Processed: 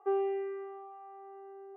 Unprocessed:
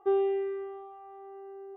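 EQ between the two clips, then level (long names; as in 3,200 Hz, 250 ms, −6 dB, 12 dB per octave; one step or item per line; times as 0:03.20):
elliptic band-pass filter 430–2,600 Hz
high-frequency loss of the air 91 metres
0.0 dB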